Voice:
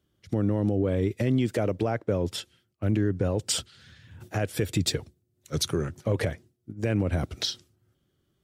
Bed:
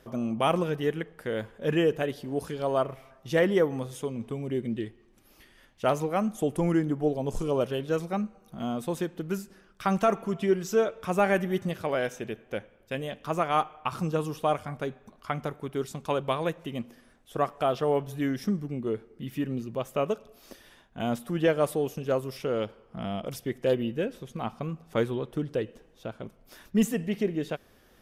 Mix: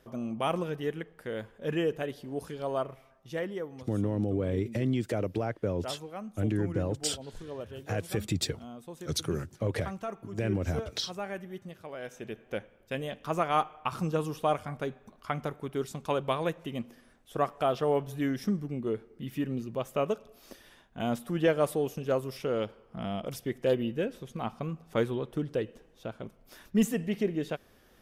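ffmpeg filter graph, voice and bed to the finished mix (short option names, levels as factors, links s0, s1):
-filter_complex "[0:a]adelay=3550,volume=0.596[s0];[1:a]volume=2.24,afade=t=out:st=2.75:d=0.84:silence=0.375837,afade=t=in:st=11.98:d=0.5:silence=0.251189[s1];[s0][s1]amix=inputs=2:normalize=0"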